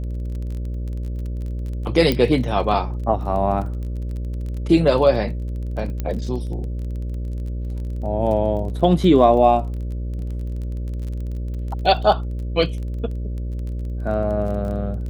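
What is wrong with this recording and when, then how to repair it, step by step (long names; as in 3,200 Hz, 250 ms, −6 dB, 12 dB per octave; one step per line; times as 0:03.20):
mains buzz 60 Hz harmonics 10 −26 dBFS
surface crackle 22 per second −30 dBFS
0:02.12: click −7 dBFS
0:06.00: click −13 dBFS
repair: click removal
hum removal 60 Hz, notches 10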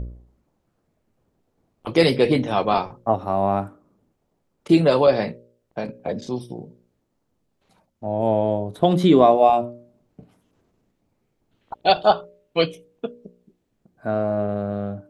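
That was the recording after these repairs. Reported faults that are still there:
none of them is left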